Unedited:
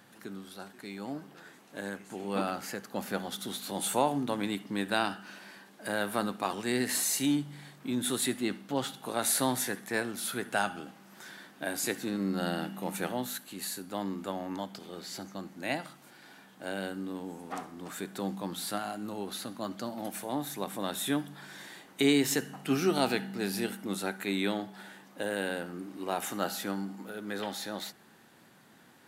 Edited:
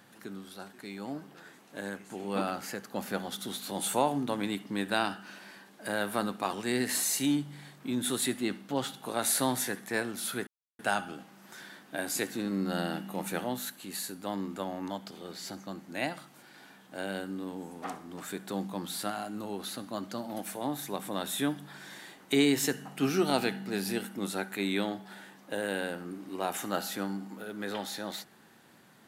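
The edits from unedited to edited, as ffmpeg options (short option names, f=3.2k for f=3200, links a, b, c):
-filter_complex "[0:a]asplit=2[a][b];[a]atrim=end=10.47,asetpts=PTS-STARTPTS,afade=t=out:st=10.466:d=0.004:c=hsin,apad=pad_dur=0.32[c];[b]atrim=start=10.47,asetpts=PTS-STARTPTS,afade=t=in:d=0.004:c=hsin[d];[c][d]concat=n=2:v=0:a=1"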